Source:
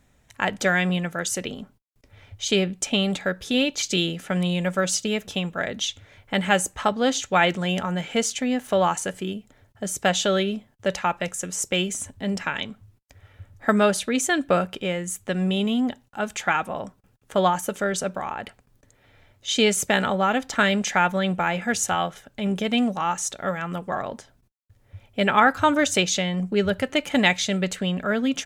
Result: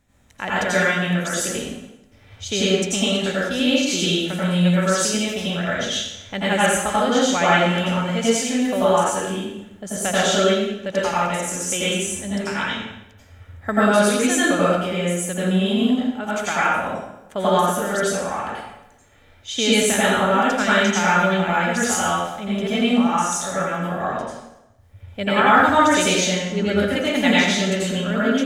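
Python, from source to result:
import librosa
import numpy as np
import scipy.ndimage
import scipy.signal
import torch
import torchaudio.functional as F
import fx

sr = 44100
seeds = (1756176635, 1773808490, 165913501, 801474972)

y = fx.rev_plate(x, sr, seeds[0], rt60_s=0.91, hf_ratio=0.85, predelay_ms=75, drr_db=-8.5)
y = y * 10.0 ** (-5.0 / 20.0)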